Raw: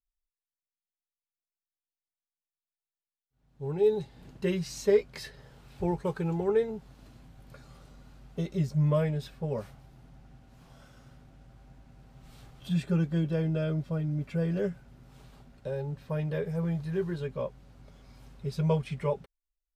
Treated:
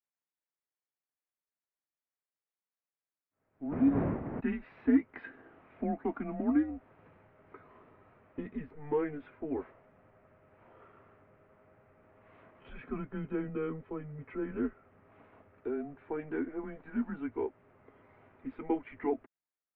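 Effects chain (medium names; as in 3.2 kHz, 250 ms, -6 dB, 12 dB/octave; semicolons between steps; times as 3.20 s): dead-time distortion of 0.05 ms; 3.71–4.39 s: wind noise 240 Hz -23 dBFS; in parallel at -2 dB: compression, threshold -35 dBFS, peak gain reduction 16.5 dB; on the sum: mistuned SSB -150 Hz 310–2400 Hz; trim -3 dB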